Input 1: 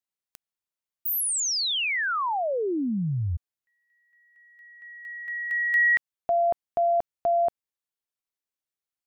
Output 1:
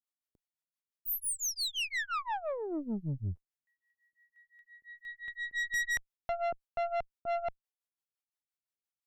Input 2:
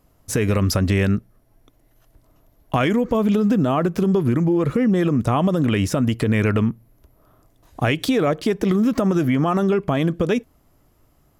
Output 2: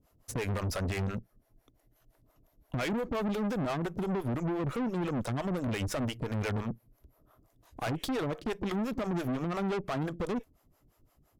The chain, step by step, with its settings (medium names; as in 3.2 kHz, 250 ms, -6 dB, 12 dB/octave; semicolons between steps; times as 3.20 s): harmonic tremolo 5.8 Hz, depth 100%, crossover 430 Hz; valve stage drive 29 dB, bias 0.65